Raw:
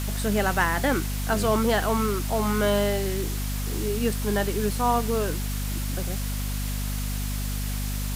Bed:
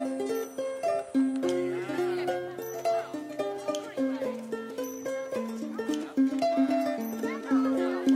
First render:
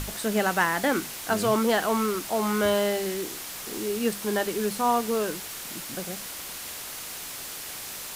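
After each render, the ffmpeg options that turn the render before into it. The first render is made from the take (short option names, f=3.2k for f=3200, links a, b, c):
-af "bandreject=f=50:t=h:w=6,bandreject=f=100:t=h:w=6,bandreject=f=150:t=h:w=6,bandreject=f=200:t=h:w=6,bandreject=f=250:t=h:w=6"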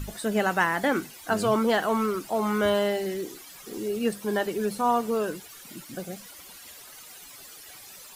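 -af "afftdn=nr=14:nf=-38"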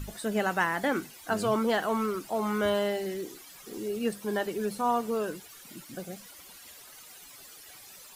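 -af "volume=-3.5dB"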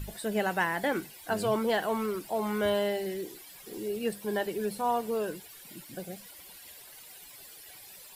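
-af "equalizer=f=250:t=o:w=0.33:g=-6,equalizer=f=1.25k:t=o:w=0.33:g=-8,equalizer=f=6.3k:t=o:w=0.33:g=-6,equalizer=f=12.5k:t=o:w=0.33:g=3"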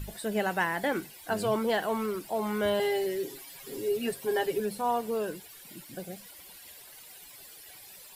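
-filter_complex "[0:a]asettb=1/sr,asplit=3[a][b][c];[a]atrim=end=2.794[d];[b]atrim=start=2.79:end=4.6,asetpts=PTS-STARTPTS,afade=t=in:d=0.004:c=qsin,afade=t=out:st=1.806:d=0.004:c=qsin,aecho=1:1:7.4:0.9,atrim=end_sample=79821[e];[c]atrim=start=4.596[f];[d][e]acrossfade=d=0.004:c1=hsin:c2=qsin[g];[g][f]acrossfade=d=0.004:c1=qsin:c2=hsin"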